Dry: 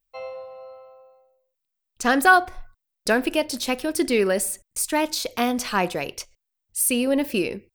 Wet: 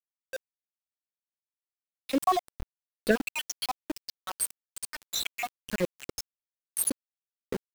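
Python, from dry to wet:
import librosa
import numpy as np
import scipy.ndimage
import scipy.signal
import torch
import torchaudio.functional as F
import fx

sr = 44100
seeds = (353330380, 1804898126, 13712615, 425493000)

p1 = fx.spec_dropout(x, sr, seeds[0], share_pct=81)
p2 = fx.dereverb_blind(p1, sr, rt60_s=0.9)
p3 = fx.dynamic_eq(p2, sr, hz=1700.0, q=4.3, threshold_db=-43.0, ratio=4.0, max_db=-3)
p4 = fx.level_steps(p3, sr, step_db=19)
p5 = p3 + (p4 * 10.0 ** (0.5 / 20.0))
p6 = fx.rotary_switch(p5, sr, hz=7.5, then_hz=1.2, switch_at_s=0.69)
y = np.where(np.abs(p6) >= 10.0 ** (-30.5 / 20.0), p6, 0.0)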